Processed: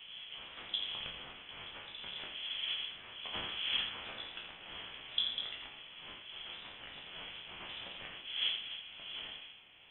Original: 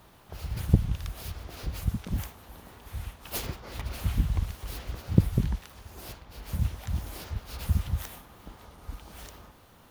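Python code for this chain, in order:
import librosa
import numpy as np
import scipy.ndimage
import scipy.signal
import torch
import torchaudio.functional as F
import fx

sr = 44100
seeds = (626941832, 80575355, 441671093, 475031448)

y = fx.spec_trails(x, sr, decay_s=0.43)
y = fx.dmg_wind(y, sr, seeds[0], corner_hz=520.0, level_db=-39.0)
y = scipy.signal.sosfilt(scipy.signal.butter(4, 320.0, 'highpass', fs=sr, output='sos'), y)
y = y + 10.0 ** (-8.0 / 20.0) * np.pad(y, (int(84 * sr / 1000.0), 0))[:len(y)]
y = fx.freq_invert(y, sr, carrier_hz=3700)
y = y * 10.0 ** (-3.5 / 20.0)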